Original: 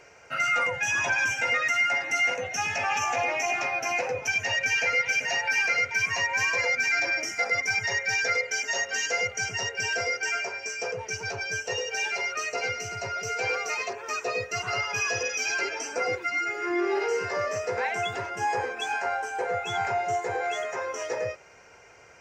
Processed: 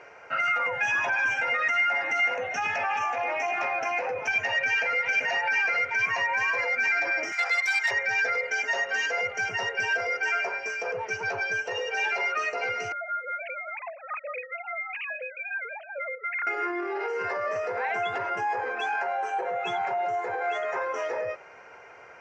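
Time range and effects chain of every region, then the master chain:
0:07.32–0:07.91: phase distortion by the signal itself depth 0.067 ms + Bessel high-pass filter 830 Hz, order 6 + spectral tilt +2.5 dB per octave
0:12.92–0:16.47: three sine waves on the formant tracks + downward compressor 3 to 1, threshold −37 dBFS
0:19.05–0:20.06: notch filter 5,000 Hz, Q 20 + comb filter 5.4 ms
whole clip: low-pass filter 1,300 Hz 12 dB per octave; brickwall limiter −28.5 dBFS; spectral tilt +4 dB per octave; level +8 dB

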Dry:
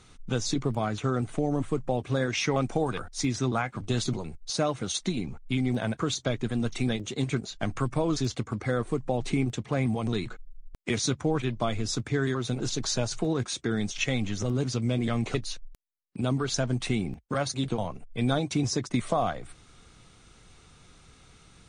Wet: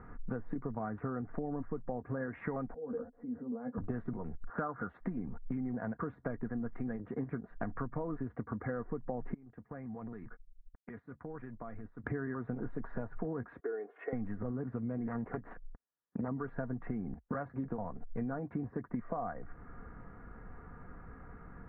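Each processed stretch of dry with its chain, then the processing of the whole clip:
0:02.74–0:03.78: compressor whose output falls as the input rises −35 dBFS + pair of resonant band-passes 350 Hz, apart 0.87 octaves + double-tracking delay 13 ms −3 dB
0:04.44–0:04.89: upward compression, threshold −29 dBFS + low-pass with resonance 1,400 Hz, resonance Q 4.8
0:09.34–0:12.04: first-order pre-emphasis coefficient 0.8 + downward expander −48 dBFS + downward compressor 12 to 1, threshold −44 dBFS
0:13.60–0:14.13: four-pole ladder high-pass 410 Hz, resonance 65% + comb filter 2.8 ms, depth 52%
0:15.07–0:16.28: phase distortion by the signal itself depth 0.55 ms + high-pass filter 51 Hz 6 dB per octave
whole clip: Chebyshev low-pass filter 1,800 Hz, order 5; comb filter 4.2 ms, depth 36%; downward compressor 6 to 1, threshold −41 dBFS; level +5.5 dB

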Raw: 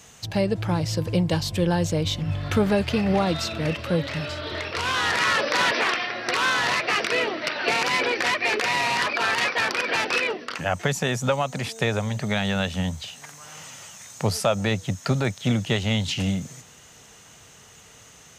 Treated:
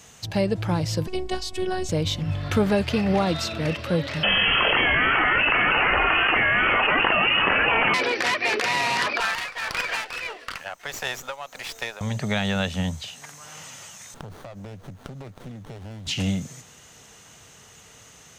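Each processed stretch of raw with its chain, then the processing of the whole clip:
0:01.07–0:01.89: phases set to zero 370 Hz + low-pass filter 11,000 Hz 24 dB per octave
0:04.23–0:07.94: voice inversion scrambler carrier 3,200 Hz + envelope flattener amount 100%
0:09.20–0:12.01: high-pass filter 730 Hz + amplitude tremolo 1.6 Hz, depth 65% + windowed peak hold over 3 samples
0:14.14–0:16.07: high-pass filter 41 Hz + downward compressor 12 to 1, threshold −35 dBFS + windowed peak hold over 17 samples
whole clip: no processing

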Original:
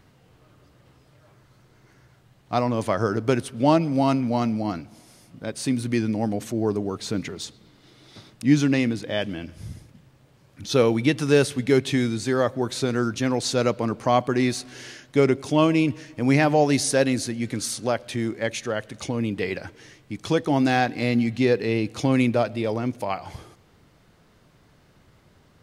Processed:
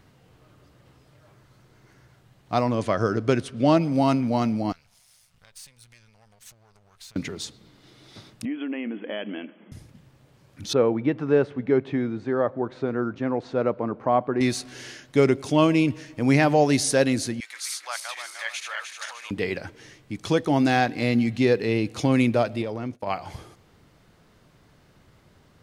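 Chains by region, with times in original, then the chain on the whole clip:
0:02.75–0:03.77: low-pass filter 7,400 Hz + notch filter 870 Hz, Q 6.8
0:04.72–0:07.16: gain on one half-wave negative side −12 dB + downward compressor 5 to 1, threshold −37 dBFS + guitar amp tone stack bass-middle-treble 10-0-10
0:08.45–0:09.72: downward compressor 8 to 1, threshold −25 dBFS + linear-phase brick-wall band-pass 190–3,400 Hz + one half of a high-frequency compander decoder only
0:10.73–0:14.41: low-pass filter 1,300 Hz + low-shelf EQ 150 Hz −10.5 dB
0:17.40–0:19.31: feedback delay that plays each chunk backwards 151 ms, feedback 65%, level −4.5 dB + dynamic equaliser 7,100 Hz, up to −4 dB, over −39 dBFS, Q 0.76 + high-pass filter 1,000 Hz 24 dB per octave
0:22.62–0:23.07: downward expander −31 dBFS + high-shelf EQ 5,600 Hz −6 dB + downward compressor 4 to 1, threshold −26 dBFS
whole clip: no processing

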